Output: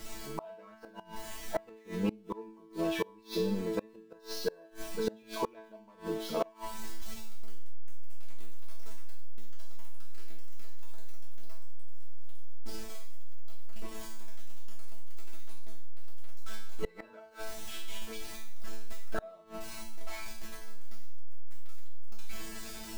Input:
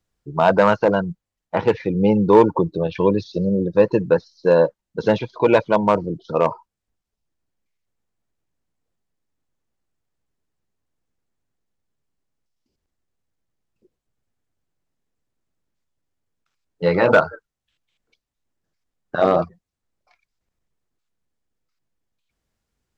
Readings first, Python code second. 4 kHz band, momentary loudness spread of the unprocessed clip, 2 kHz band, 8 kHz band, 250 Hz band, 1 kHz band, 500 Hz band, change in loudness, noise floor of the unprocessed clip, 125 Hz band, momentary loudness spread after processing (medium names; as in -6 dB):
-5.5 dB, 9 LU, -18.5 dB, no reading, -17.0 dB, -20.5 dB, -20.5 dB, -21.0 dB, -84 dBFS, -16.0 dB, 23 LU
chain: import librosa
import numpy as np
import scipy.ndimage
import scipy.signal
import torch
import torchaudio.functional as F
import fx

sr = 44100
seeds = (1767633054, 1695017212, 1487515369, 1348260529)

y = x + 0.5 * 10.0 ** (-28.5 / 20.0) * np.sign(x)
y = fx.resonator_bank(y, sr, root=57, chord='fifth', decay_s=0.6)
y = fx.gate_flip(y, sr, shuts_db=-31.0, range_db=-29)
y = y * 10.0 ** (12.0 / 20.0)